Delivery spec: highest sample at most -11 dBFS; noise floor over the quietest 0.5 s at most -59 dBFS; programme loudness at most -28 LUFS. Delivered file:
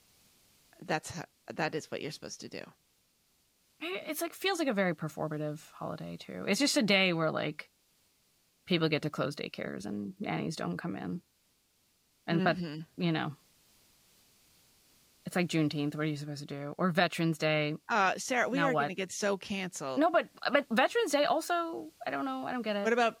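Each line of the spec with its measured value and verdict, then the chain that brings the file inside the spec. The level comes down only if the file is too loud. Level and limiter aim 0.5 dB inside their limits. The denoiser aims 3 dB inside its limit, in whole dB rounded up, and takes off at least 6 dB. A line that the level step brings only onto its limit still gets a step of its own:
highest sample -10.5 dBFS: fail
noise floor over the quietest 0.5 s -72 dBFS: OK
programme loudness -32.0 LUFS: OK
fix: limiter -11.5 dBFS

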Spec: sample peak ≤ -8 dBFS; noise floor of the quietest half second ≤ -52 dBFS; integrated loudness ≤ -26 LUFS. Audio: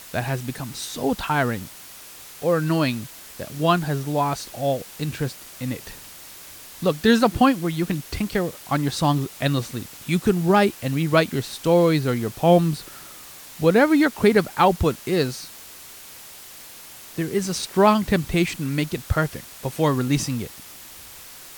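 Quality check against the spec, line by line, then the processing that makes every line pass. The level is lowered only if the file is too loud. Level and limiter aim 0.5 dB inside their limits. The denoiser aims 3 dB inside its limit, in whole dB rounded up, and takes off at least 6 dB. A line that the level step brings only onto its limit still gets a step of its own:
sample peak -4.5 dBFS: fail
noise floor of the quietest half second -42 dBFS: fail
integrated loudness -22.0 LUFS: fail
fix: denoiser 9 dB, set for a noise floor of -42 dBFS; gain -4.5 dB

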